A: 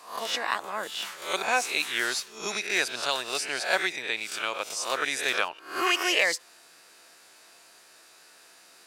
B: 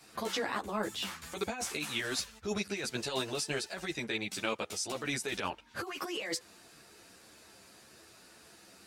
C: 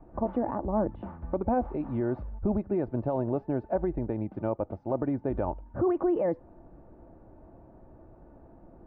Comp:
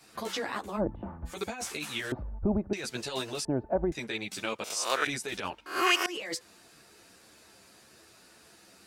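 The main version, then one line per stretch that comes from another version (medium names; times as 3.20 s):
B
0.79–1.28 s: from C, crossfade 0.06 s
2.12–2.73 s: from C
3.45–3.92 s: from C
4.64–5.07 s: from A
5.66–6.06 s: from A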